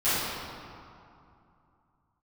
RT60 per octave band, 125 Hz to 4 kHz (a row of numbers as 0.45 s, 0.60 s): 3.2 s, 2.9 s, 2.4 s, 2.8 s, 2.0 s, 1.4 s